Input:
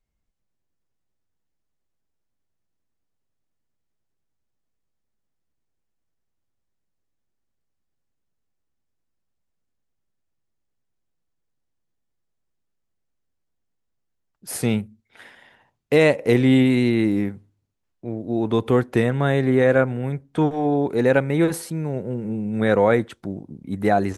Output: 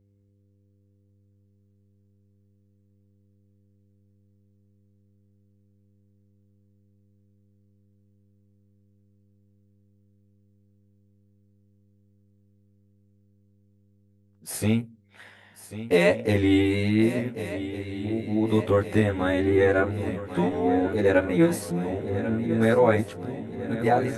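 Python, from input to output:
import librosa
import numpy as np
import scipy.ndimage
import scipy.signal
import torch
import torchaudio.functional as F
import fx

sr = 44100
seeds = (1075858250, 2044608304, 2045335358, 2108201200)

y = fx.frame_reverse(x, sr, frame_ms=36.0)
y = fx.dmg_buzz(y, sr, base_hz=100.0, harmonics=5, level_db=-63.0, tilt_db=-7, odd_only=False)
y = fx.echo_swing(y, sr, ms=1455, ratio=3, feedback_pct=58, wet_db=-13.0)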